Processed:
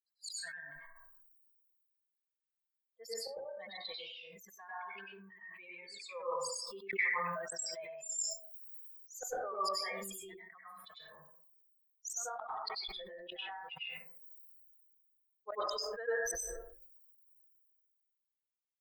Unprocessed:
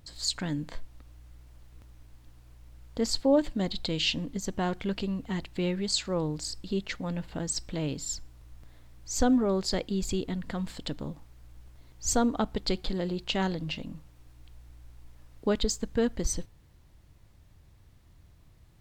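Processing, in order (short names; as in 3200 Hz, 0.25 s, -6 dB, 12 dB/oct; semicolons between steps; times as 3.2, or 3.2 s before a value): per-bin expansion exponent 3; elliptic high-pass 620 Hz, stop band 50 dB; bell 4300 Hz -9 dB 2.6 oct; 3.91–6 compressor 5:1, threshold -60 dBFS, peak gain reduction 21.5 dB; flipped gate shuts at -34 dBFS, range -25 dB; rotary speaker horn 1 Hz; plate-style reverb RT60 0.53 s, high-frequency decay 0.3×, pre-delay 85 ms, DRR -8.5 dB; sustainer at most 26 dB/s; gain +8 dB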